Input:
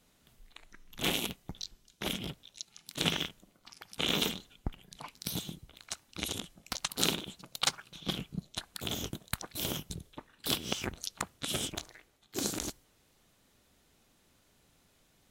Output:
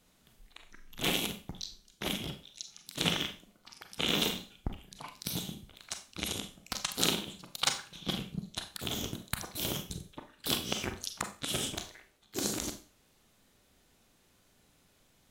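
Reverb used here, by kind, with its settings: Schroeder reverb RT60 0.35 s, combs from 30 ms, DRR 6.5 dB

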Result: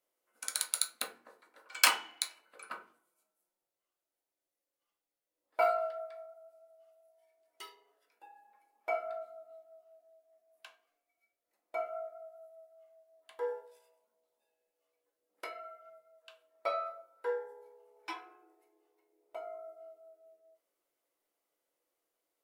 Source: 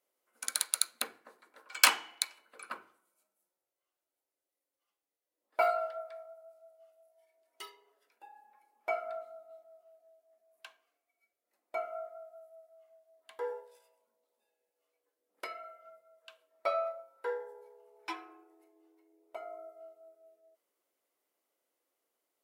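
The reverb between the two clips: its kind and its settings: simulated room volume 120 m³, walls furnished, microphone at 0.68 m; trim -2.5 dB

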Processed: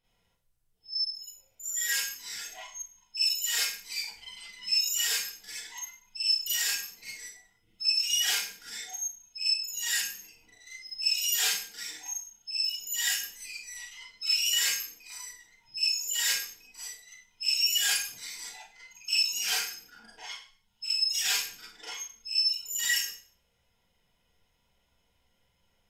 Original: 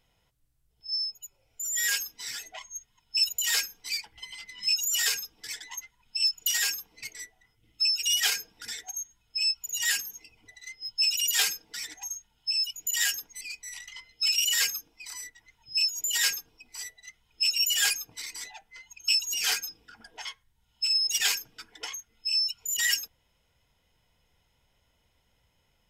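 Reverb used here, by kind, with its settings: Schroeder reverb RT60 0.44 s, combs from 32 ms, DRR -9 dB; trim -11 dB

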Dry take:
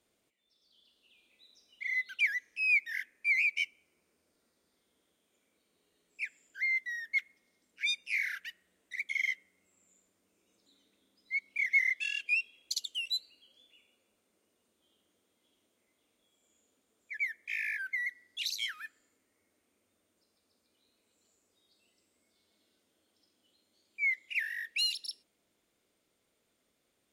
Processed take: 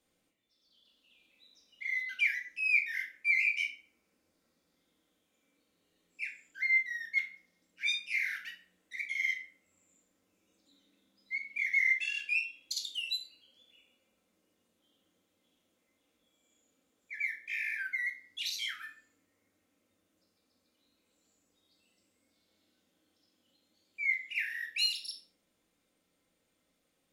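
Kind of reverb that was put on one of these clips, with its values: simulated room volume 560 m³, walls furnished, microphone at 2.1 m; trim -3 dB

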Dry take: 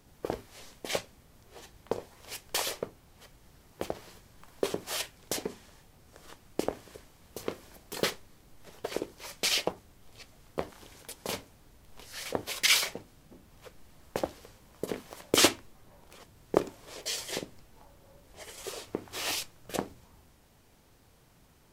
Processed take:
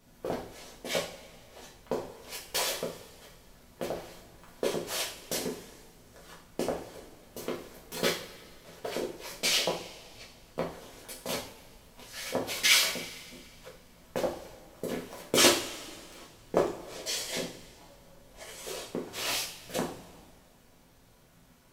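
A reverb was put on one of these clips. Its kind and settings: two-slope reverb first 0.4 s, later 2.1 s, from -18 dB, DRR -4.5 dB; trim -4 dB

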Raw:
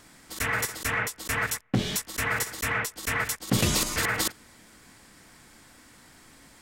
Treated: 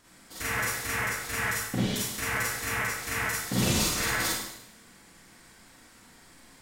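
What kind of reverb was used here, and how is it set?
Schroeder reverb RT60 0.83 s, combs from 33 ms, DRR -7 dB; trim -8.5 dB

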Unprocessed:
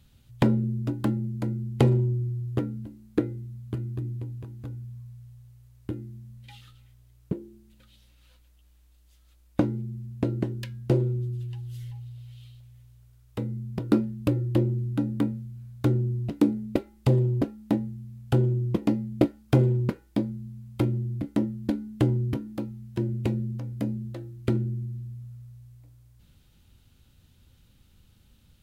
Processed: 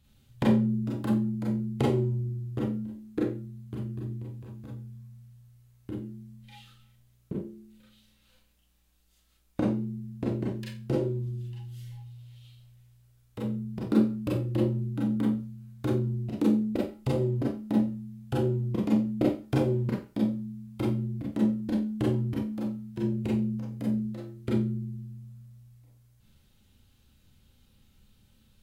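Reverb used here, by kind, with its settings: Schroeder reverb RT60 0.31 s, combs from 29 ms, DRR -4.5 dB; trim -7.5 dB

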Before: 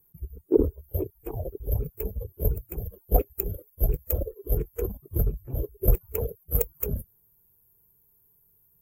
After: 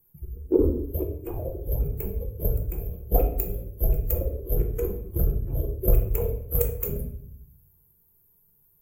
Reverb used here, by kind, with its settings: simulated room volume 140 m³, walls mixed, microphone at 0.73 m; trim -1 dB

